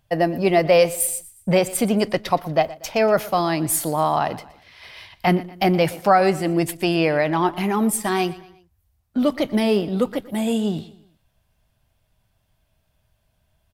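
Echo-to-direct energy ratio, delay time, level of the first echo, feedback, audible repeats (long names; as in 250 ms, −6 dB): −17.5 dB, 119 ms, −18.5 dB, 43%, 3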